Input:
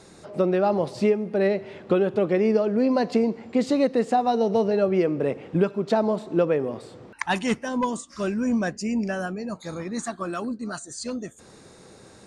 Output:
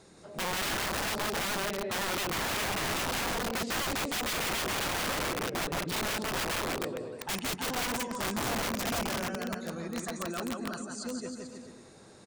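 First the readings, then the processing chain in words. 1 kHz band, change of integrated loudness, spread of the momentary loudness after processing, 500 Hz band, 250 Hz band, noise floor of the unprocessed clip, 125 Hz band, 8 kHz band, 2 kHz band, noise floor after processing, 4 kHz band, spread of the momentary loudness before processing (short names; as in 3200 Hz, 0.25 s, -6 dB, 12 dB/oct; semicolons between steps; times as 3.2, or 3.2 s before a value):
-5.0 dB, -7.5 dB, 7 LU, -14.0 dB, -12.5 dB, -50 dBFS, -8.0 dB, +6.0 dB, +1.5 dB, -53 dBFS, +7.0 dB, 11 LU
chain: bouncing-ball echo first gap 0.17 s, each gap 0.85×, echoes 5; wrapped overs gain 20 dB; gain -7 dB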